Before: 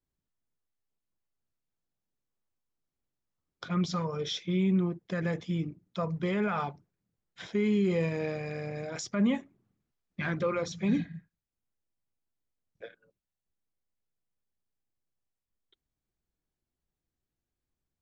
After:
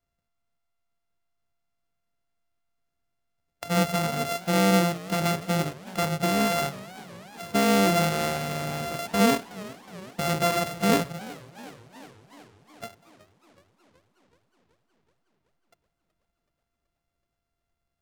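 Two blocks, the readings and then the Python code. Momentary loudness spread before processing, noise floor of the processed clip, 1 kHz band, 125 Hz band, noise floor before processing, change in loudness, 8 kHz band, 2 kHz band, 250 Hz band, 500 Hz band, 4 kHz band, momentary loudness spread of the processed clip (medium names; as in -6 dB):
18 LU, -82 dBFS, +12.5 dB, +4.0 dB, under -85 dBFS, +6.0 dB, no reading, +9.0 dB, +3.5 dB, +6.5 dB, +10.5 dB, 21 LU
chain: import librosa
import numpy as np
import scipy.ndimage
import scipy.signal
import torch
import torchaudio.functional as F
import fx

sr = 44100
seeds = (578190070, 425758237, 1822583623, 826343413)

y = np.r_[np.sort(x[:len(x) // 64 * 64].reshape(-1, 64), axis=1).ravel(), x[len(x) // 64 * 64:]]
y = fx.echo_warbled(y, sr, ms=372, feedback_pct=68, rate_hz=2.8, cents=168, wet_db=-19.0)
y = y * 10.0 ** (5.5 / 20.0)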